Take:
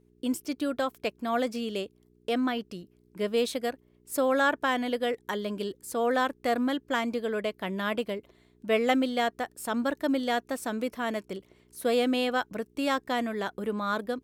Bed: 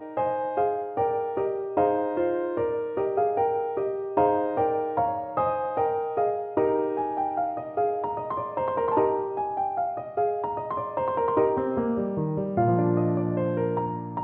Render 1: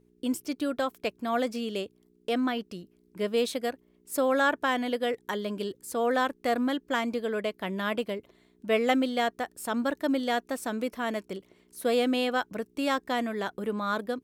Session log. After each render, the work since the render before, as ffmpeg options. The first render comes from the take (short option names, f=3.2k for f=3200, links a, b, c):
-af "bandreject=f=60:t=h:w=4,bandreject=f=120:t=h:w=4"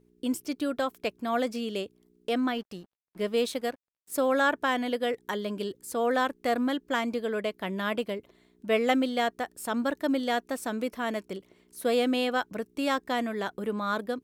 -filter_complex "[0:a]asettb=1/sr,asplit=3[a][b][c];[a]atrim=end=2.544[d];[b]atrim=start=2.54:end=4.27,asetpts=PTS-STARTPTS,afade=t=in:d=0.004:c=qsin,afade=t=out:st=1.726:d=0.004:c=qsin,aeval=exprs='sgn(val(0))*max(abs(val(0))-0.00188,0)':c=same[e];[c]atrim=start=4.266[f];[d][e]acrossfade=d=0.004:c1=hsin:c2=qsin[g];[g][f]acrossfade=d=0.004:c1=qsin:c2=hsin"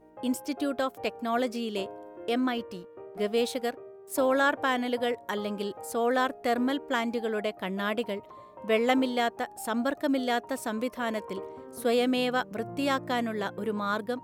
-filter_complex "[1:a]volume=-18.5dB[a];[0:a][a]amix=inputs=2:normalize=0"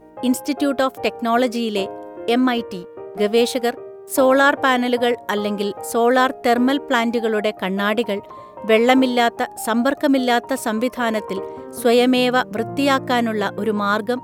-af "volume=10.5dB,alimiter=limit=-3dB:level=0:latency=1"